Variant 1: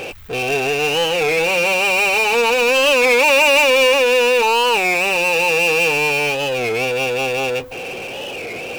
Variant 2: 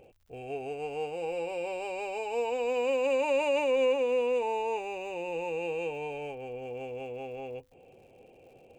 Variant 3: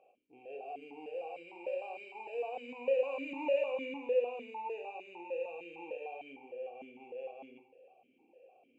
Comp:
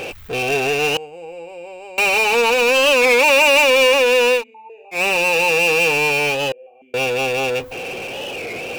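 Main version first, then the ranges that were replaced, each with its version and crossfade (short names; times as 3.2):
1
0.97–1.98 from 2
4.39–4.96 from 3, crossfade 0.10 s
6.52–6.94 from 3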